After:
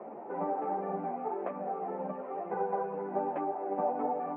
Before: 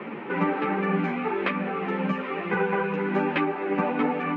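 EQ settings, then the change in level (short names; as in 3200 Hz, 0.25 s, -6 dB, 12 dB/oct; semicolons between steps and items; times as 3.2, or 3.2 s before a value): HPF 480 Hz 6 dB/oct; synth low-pass 700 Hz, resonance Q 4.9; -8.5 dB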